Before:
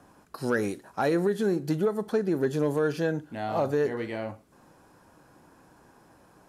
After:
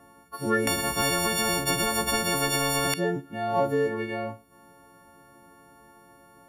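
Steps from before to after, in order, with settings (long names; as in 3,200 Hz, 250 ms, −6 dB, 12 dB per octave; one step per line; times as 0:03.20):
every partial snapped to a pitch grid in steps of 4 semitones
parametric band 6,800 Hz −13 dB 2.2 octaves
0:00.67–0:02.94: every bin compressed towards the loudest bin 10 to 1
level +1.5 dB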